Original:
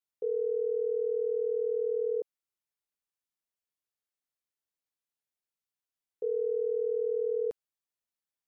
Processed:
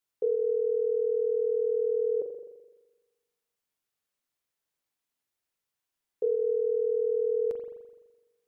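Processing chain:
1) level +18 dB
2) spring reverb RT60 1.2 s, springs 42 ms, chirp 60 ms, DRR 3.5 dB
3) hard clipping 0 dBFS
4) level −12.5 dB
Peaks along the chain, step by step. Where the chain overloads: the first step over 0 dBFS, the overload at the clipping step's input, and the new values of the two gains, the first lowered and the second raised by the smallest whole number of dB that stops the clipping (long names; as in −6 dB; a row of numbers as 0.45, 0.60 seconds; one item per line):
−6.0, −6.0, −6.0, −18.5 dBFS
no step passes full scale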